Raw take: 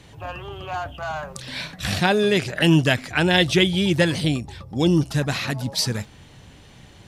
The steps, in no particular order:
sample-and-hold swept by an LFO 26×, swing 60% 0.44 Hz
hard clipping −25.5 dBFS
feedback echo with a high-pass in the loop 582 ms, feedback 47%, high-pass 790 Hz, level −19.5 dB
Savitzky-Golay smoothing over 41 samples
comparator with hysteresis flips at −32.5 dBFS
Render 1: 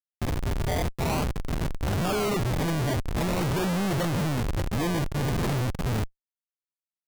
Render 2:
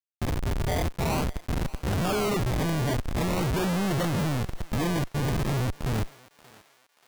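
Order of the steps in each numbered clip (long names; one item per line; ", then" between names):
Savitzky-Golay smoothing, then sample-and-hold swept by an LFO, then feedback echo with a high-pass in the loop, then comparator with hysteresis, then hard clipping
Savitzky-Golay smoothing, then sample-and-hold swept by an LFO, then comparator with hysteresis, then feedback echo with a high-pass in the loop, then hard clipping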